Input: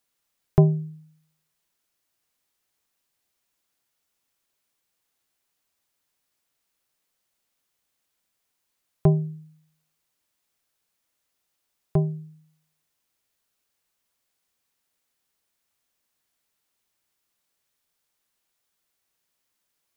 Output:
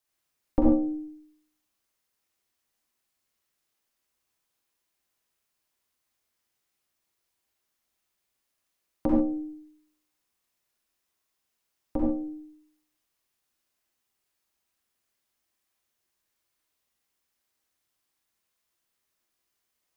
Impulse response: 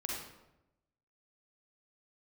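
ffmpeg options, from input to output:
-filter_complex "[0:a]bandreject=f=155.1:t=h:w=4,bandreject=f=310.2:t=h:w=4,bandreject=f=465.3:t=h:w=4,bandreject=f=620.4:t=h:w=4,bandreject=f=775.5:t=h:w=4,bandreject=f=930.6:t=h:w=4,bandreject=f=1.0857k:t=h:w=4,bandreject=f=1.2408k:t=h:w=4,bandreject=f=1.3959k:t=h:w=4,bandreject=f=1.551k:t=h:w=4,bandreject=f=1.7061k:t=h:w=4,bandreject=f=1.8612k:t=h:w=4,bandreject=f=2.0163k:t=h:w=4,bandreject=f=2.1714k:t=h:w=4,bandreject=f=2.3265k:t=h:w=4,bandreject=f=2.4816k:t=h:w=4,bandreject=f=2.6367k:t=h:w=4,bandreject=f=2.7918k:t=h:w=4,bandreject=f=2.9469k:t=h:w=4,bandreject=f=3.102k:t=h:w=4,bandreject=f=3.2571k:t=h:w=4,bandreject=f=3.4122k:t=h:w=4,bandreject=f=3.5673k:t=h:w=4,bandreject=f=3.7224k:t=h:w=4,bandreject=f=3.8775k:t=h:w=4,bandreject=f=4.0326k:t=h:w=4,bandreject=f=4.1877k:t=h:w=4,bandreject=f=4.3428k:t=h:w=4,bandreject=f=4.4979k:t=h:w=4,bandreject=f=4.653k:t=h:w=4,bandreject=f=4.8081k:t=h:w=4,bandreject=f=4.9632k:t=h:w=4,bandreject=f=5.1183k:t=h:w=4,bandreject=f=5.2734k:t=h:w=4,bandreject=f=5.4285k:t=h:w=4,bandreject=f=5.5836k:t=h:w=4,bandreject=f=5.7387k:t=h:w=4,aeval=exprs='val(0)*sin(2*PI*150*n/s)':c=same[a];[1:a]atrim=start_sample=2205,atrim=end_sample=6615[b];[a][b]afir=irnorm=-1:irlink=0"

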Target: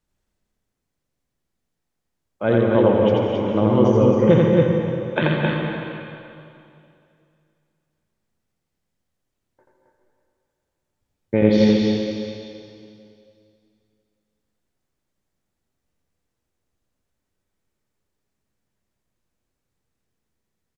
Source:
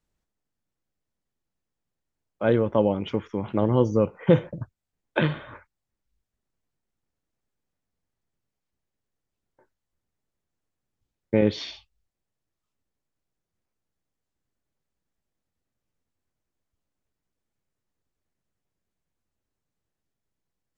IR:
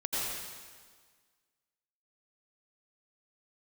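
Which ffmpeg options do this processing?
-filter_complex "[0:a]aecho=1:1:84.55|268.2:0.794|0.631,asplit=2[a][b];[1:a]atrim=start_sample=2205,asetrate=28224,aresample=44100[c];[b][c]afir=irnorm=-1:irlink=0,volume=-10dB[d];[a][d]amix=inputs=2:normalize=0,volume=-1dB"

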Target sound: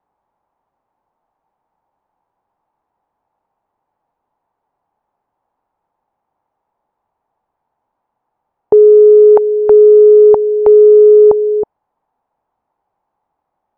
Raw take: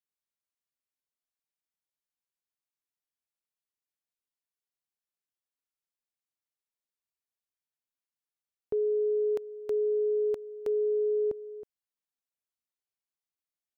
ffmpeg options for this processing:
-af "lowpass=f=860:t=q:w=4.9,apsyclip=27.5dB,volume=-1.5dB"

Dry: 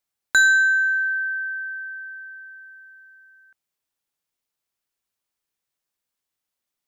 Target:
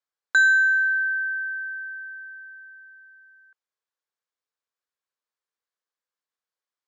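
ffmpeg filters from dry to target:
-af "highpass=360,equalizer=f=480:t=q:w=4:g=7,equalizer=f=1.1k:t=q:w=4:g=6,equalizer=f=1.6k:t=q:w=4:g=6,equalizer=f=2.7k:t=q:w=4:g=-3,equalizer=f=6k:t=q:w=4:g=-3,lowpass=f=7.4k:w=0.5412,lowpass=f=7.4k:w=1.3066,volume=-7.5dB"

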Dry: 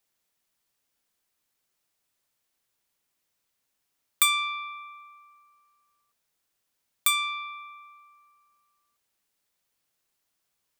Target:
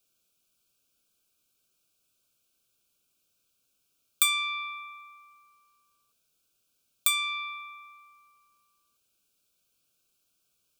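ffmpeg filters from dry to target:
-filter_complex "[0:a]equalizer=f=900:t=o:w=0.59:g=-13,asplit=2[a][b];[b]acompressor=threshold=-33dB:ratio=6,volume=3dB[c];[a][c]amix=inputs=2:normalize=0,asuperstop=centerf=1900:order=12:qfactor=2.8,volume=-3.5dB"

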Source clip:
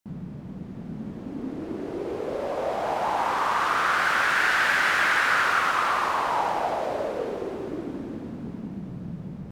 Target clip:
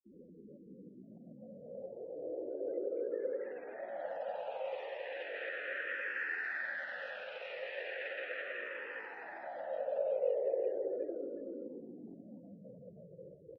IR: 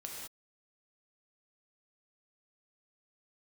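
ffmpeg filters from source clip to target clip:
-filter_complex "[0:a]acrossover=split=3600[a][b];[b]acompressor=threshold=-47dB:ratio=4:attack=1:release=60[c];[a][c]amix=inputs=2:normalize=0,aemphasis=mode=production:type=50kf,afftfilt=real='re*gte(hypot(re,im),0.0158)':imag='im*gte(hypot(re,im),0.0158)':win_size=1024:overlap=0.75,equalizer=f=110:w=0.46:g=-5,acrossover=split=780[d][e];[e]alimiter=limit=-18.5dB:level=0:latency=1:release=63[f];[d][f]amix=inputs=2:normalize=0,acompressor=threshold=-35dB:ratio=4,atempo=0.7,asplit=3[g][h][i];[g]bandpass=f=530:t=q:w=8,volume=0dB[j];[h]bandpass=f=1.84k:t=q:w=8,volume=-6dB[k];[i]bandpass=f=2.48k:t=q:w=8,volume=-9dB[l];[j][k][l]amix=inputs=3:normalize=0,aecho=1:1:376:0.398,asplit=2[m][n];[n]afreqshift=-0.36[o];[m][o]amix=inputs=2:normalize=1,volume=11dB"

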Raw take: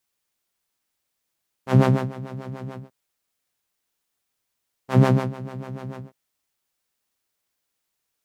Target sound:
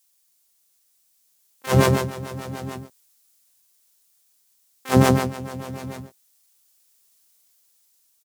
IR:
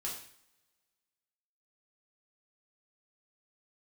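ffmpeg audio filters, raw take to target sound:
-filter_complex "[0:a]bass=f=250:g=-3,treble=f=4k:g=15,asplit=3[a][b][c];[b]asetrate=29433,aresample=44100,atempo=1.49831,volume=-9dB[d];[c]asetrate=88200,aresample=44100,atempo=0.5,volume=-5dB[e];[a][d][e]amix=inputs=3:normalize=0,dynaudnorm=f=730:g=5:m=11.5dB,volume=-1dB"

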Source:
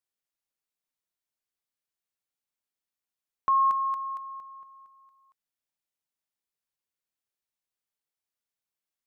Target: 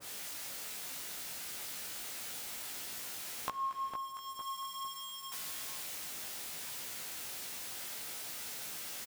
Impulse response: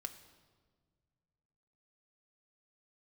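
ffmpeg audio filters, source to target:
-filter_complex "[0:a]aeval=exprs='val(0)+0.5*0.00708*sgn(val(0))':c=same,highpass=53,lowshelf=f=130:g=-4,bandreject=f=1.1k:w=21,acompressor=threshold=-44dB:ratio=6,flanger=delay=16:depth=3.1:speed=0.59,asplit=2[a][b];[b]adelay=456,lowpass=f=1k:p=1,volume=-5dB,asplit=2[c][d];[d]adelay=456,lowpass=f=1k:p=1,volume=0.47,asplit=2[e][f];[f]adelay=456,lowpass=f=1k:p=1,volume=0.47,asplit=2[g][h];[h]adelay=456,lowpass=f=1k:p=1,volume=0.47,asplit=2[i][j];[j]adelay=456,lowpass=f=1k:p=1,volume=0.47,asplit=2[k][l];[l]adelay=456,lowpass=f=1k:p=1,volume=0.47[m];[a][c][e][g][i][k][m]amix=inputs=7:normalize=0,asplit=2[n][o];[1:a]atrim=start_sample=2205[p];[o][p]afir=irnorm=-1:irlink=0,volume=-10.5dB[q];[n][q]amix=inputs=2:normalize=0,adynamicequalizer=threshold=0.001:dfrequency=1500:dqfactor=0.7:tfrequency=1500:tqfactor=0.7:attack=5:release=100:ratio=0.375:range=2:mode=boostabove:tftype=highshelf,volume=8dB"

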